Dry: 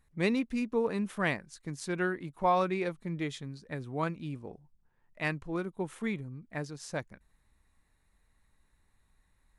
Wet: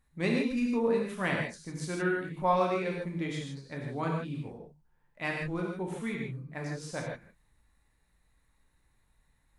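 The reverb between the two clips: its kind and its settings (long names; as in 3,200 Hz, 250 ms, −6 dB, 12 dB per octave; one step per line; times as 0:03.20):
reverb whose tail is shaped and stops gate 180 ms flat, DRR −1.5 dB
level −3 dB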